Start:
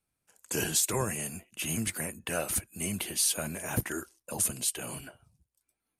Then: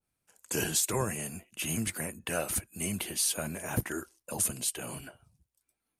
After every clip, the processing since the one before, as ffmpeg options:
ffmpeg -i in.wav -af "adynamicequalizer=threshold=0.00447:dfrequency=1900:dqfactor=0.7:tfrequency=1900:tqfactor=0.7:attack=5:release=100:ratio=0.375:range=1.5:mode=cutabove:tftype=highshelf" out.wav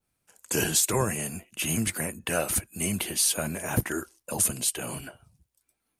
ffmpeg -i in.wav -af "acontrast=24" out.wav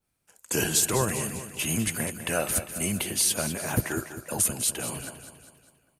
ffmpeg -i in.wav -af "aecho=1:1:200|400|600|800|1000:0.282|0.138|0.0677|0.0332|0.0162" out.wav

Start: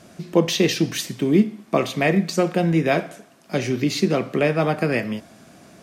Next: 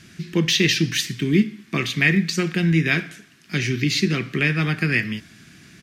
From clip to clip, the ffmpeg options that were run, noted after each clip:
ffmpeg -i in.wav -af "firequalizer=gain_entry='entry(150,0);entry(220,-6);entry(370,-7);entry(570,-23);entry(1700,3);entry(5900,-1);entry(8500,-5)':delay=0.05:min_phase=1,volume=4dB" out.wav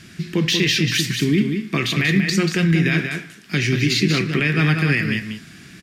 ffmpeg -i in.wav -af "bandreject=frequency=6200:width=18,alimiter=limit=-13.5dB:level=0:latency=1:release=51,aecho=1:1:187:0.501,volume=4dB" out.wav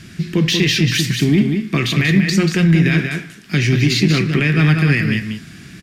ffmpeg -i in.wav -filter_complex "[0:a]lowshelf=frequency=180:gain=7,asplit=2[link_01][link_02];[link_02]asoftclip=type=tanh:threshold=-17.5dB,volume=-10.5dB[link_03];[link_01][link_03]amix=inputs=2:normalize=0" out.wav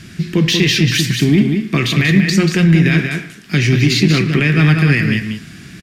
ffmpeg -i in.wav -filter_complex "[0:a]asplit=2[link_01][link_02];[link_02]adelay=110,highpass=300,lowpass=3400,asoftclip=type=hard:threshold=-12dB,volume=-17dB[link_03];[link_01][link_03]amix=inputs=2:normalize=0,volume=2dB" out.wav

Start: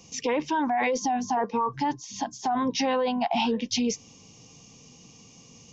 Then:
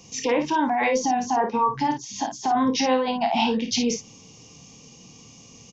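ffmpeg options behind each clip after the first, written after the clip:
ffmpeg -i in.wav -af "aecho=1:1:27|54:0.355|0.447,volume=2.5dB" out.wav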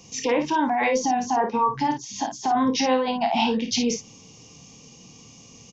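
ffmpeg -i in.wav -af anull out.wav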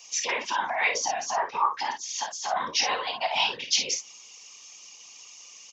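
ffmpeg -i in.wav -af "highpass=1300,afftfilt=real='hypot(re,im)*cos(2*PI*random(0))':imag='hypot(re,im)*sin(2*PI*random(1))':win_size=512:overlap=0.75,volume=9dB" out.wav

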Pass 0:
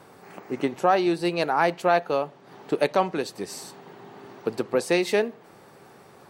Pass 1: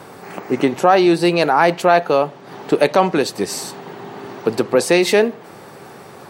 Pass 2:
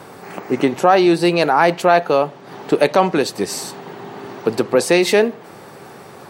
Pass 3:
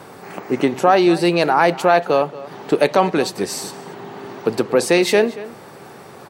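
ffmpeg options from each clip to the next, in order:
ffmpeg -i in.wav -filter_complex "[0:a]asplit=2[link_01][link_02];[link_02]alimiter=limit=-20dB:level=0:latency=1:release=16,volume=2.5dB[link_03];[link_01][link_03]amix=inputs=2:normalize=0,highpass=56,volume=4.5dB" out.wav
ffmpeg -i in.wav -af anull out.wav
ffmpeg -i in.wav -filter_complex "[0:a]asplit=2[link_01][link_02];[link_02]adelay=233.2,volume=-17dB,highshelf=frequency=4000:gain=-5.25[link_03];[link_01][link_03]amix=inputs=2:normalize=0,volume=-1dB" out.wav

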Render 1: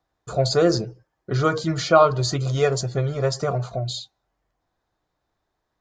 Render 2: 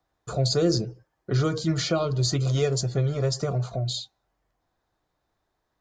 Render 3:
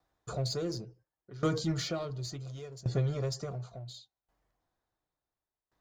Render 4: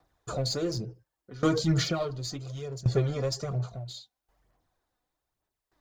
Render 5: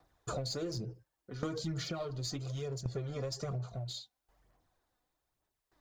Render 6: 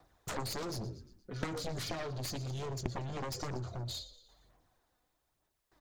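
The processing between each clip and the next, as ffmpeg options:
ffmpeg -i in.wav -filter_complex "[0:a]acrossover=split=400|3000[link_01][link_02][link_03];[link_02]acompressor=threshold=-34dB:ratio=4[link_04];[link_01][link_04][link_03]amix=inputs=3:normalize=0" out.wav
ffmpeg -i in.wav -filter_complex "[0:a]asplit=2[link_01][link_02];[link_02]asoftclip=type=hard:threshold=-27dB,volume=-5dB[link_03];[link_01][link_03]amix=inputs=2:normalize=0,aeval=exprs='val(0)*pow(10,-21*if(lt(mod(0.7*n/s,1),2*abs(0.7)/1000),1-mod(0.7*n/s,1)/(2*abs(0.7)/1000),(mod(0.7*n/s,1)-2*abs(0.7)/1000)/(1-2*abs(0.7)/1000))/20)':channel_layout=same,volume=-5dB" out.wav
ffmpeg -i in.wav -af "aphaser=in_gain=1:out_gain=1:delay=4.1:decay=0.46:speed=1.1:type=sinusoidal,volume=4.5dB" out.wav
ffmpeg -i in.wav -af "acompressor=threshold=-34dB:ratio=12" out.wav
ffmpeg -i in.wav -filter_complex "[0:a]asplit=5[link_01][link_02][link_03][link_04][link_05];[link_02]adelay=117,afreqshift=-38,volume=-16.5dB[link_06];[link_03]adelay=234,afreqshift=-76,volume=-22.9dB[link_07];[link_04]adelay=351,afreqshift=-114,volume=-29.3dB[link_08];[link_05]adelay=468,afreqshift=-152,volume=-35.6dB[link_09];[link_01][link_06][link_07][link_08][link_09]amix=inputs=5:normalize=0,aeval=exprs='0.0891*(cos(1*acos(clip(val(0)/0.0891,-1,1)))-cos(1*PI/2))+0.0178*(cos(4*acos(clip(val(0)/0.0891,-1,1)))-cos(4*PI/2))+0.0355*(cos(7*acos(clip(val(0)/0.0891,-1,1)))-cos(7*PI/2))':channel_layout=same,volume=-1.5dB" out.wav

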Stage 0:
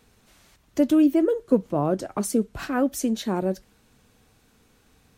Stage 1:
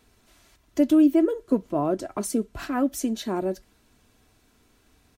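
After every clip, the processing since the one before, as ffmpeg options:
ffmpeg -i in.wav -af "aecho=1:1:3:0.41,volume=-2dB" out.wav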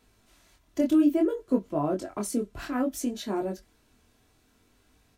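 ffmpeg -i in.wav -af "flanger=delay=19.5:depth=5.8:speed=0.6" out.wav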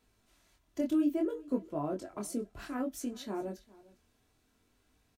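ffmpeg -i in.wav -af "aecho=1:1:405:0.0794,volume=-7.5dB" out.wav

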